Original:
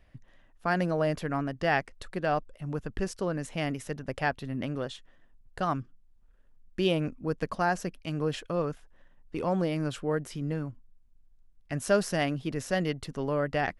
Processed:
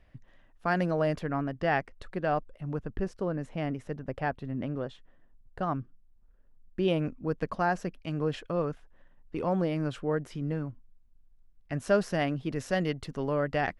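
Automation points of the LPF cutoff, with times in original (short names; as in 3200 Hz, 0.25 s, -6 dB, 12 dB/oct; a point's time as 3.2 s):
LPF 6 dB/oct
4600 Hz
from 1.19 s 2100 Hz
from 2.79 s 1100 Hz
from 6.88 s 2700 Hz
from 12.51 s 5200 Hz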